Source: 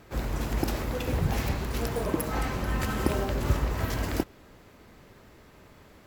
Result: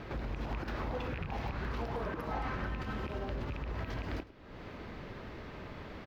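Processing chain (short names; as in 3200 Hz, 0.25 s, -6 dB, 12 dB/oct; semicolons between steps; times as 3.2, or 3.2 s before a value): rattling part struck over -22 dBFS, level -16 dBFS; high shelf 3500 Hz +9 dB; compressor 3:1, threshold -46 dBFS, peak gain reduction 20.5 dB; air absorption 290 m; limiter -37.5 dBFS, peak gain reduction 10 dB; echo 0.104 s -18.5 dB; 0.45–2.67 LFO bell 2.1 Hz 760–1600 Hz +8 dB; gain +8.5 dB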